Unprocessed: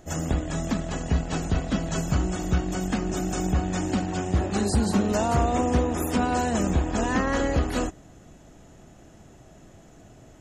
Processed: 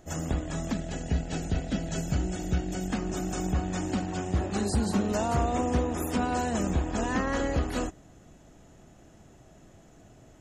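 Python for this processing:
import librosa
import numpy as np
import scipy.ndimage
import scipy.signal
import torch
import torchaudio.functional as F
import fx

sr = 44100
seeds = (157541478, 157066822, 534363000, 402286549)

y = fx.peak_eq(x, sr, hz=1100.0, db=-13.5, octaves=0.36, at=(0.72, 2.9))
y = y * librosa.db_to_amplitude(-4.0)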